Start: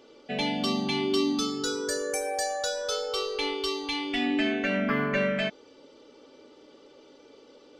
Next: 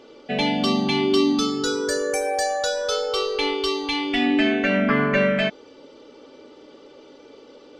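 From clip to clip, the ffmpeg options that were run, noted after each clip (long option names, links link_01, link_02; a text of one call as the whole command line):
ffmpeg -i in.wav -af "highshelf=frequency=6200:gain=-7.5,volume=7dB" out.wav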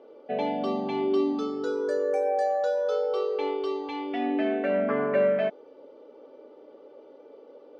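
ffmpeg -i in.wav -af "bandpass=frequency=570:width_type=q:width=1.5:csg=0" out.wav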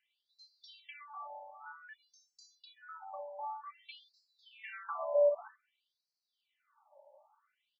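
ffmpeg -i in.wav -filter_complex "[0:a]asplit=2[link_01][link_02];[link_02]aecho=0:1:31|60:0.266|0.168[link_03];[link_01][link_03]amix=inputs=2:normalize=0,afftfilt=real='re*between(b*sr/1024,740*pow(5700/740,0.5+0.5*sin(2*PI*0.53*pts/sr))/1.41,740*pow(5700/740,0.5+0.5*sin(2*PI*0.53*pts/sr))*1.41)':imag='im*between(b*sr/1024,740*pow(5700/740,0.5+0.5*sin(2*PI*0.53*pts/sr))/1.41,740*pow(5700/740,0.5+0.5*sin(2*PI*0.53*pts/sr))*1.41)':win_size=1024:overlap=0.75,volume=-5.5dB" out.wav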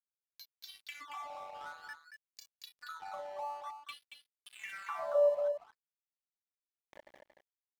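ffmpeg -i in.wav -af "aeval=exprs='sgn(val(0))*max(abs(val(0))-0.00141,0)':channel_layout=same,acompressor=mode=upward:threshold=-38dB:ratio=2.5,aecho=1:1:229:0.473" out.wav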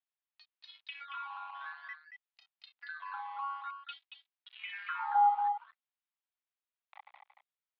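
ffmpeg -i in.wav -af "highpass=frequency=450:width_type=q:width=0.5412,highpass=frequency=450:width_type=q:width=1.307,lowpass=frequency=3500:width_type=q:width=0.5176,lowpass=frequency=3500:width_type=q:width=0.7071,lowpass=frequency=3500:width_type=q:width=1.932,afreqshift=240,volume=2dB" out.wav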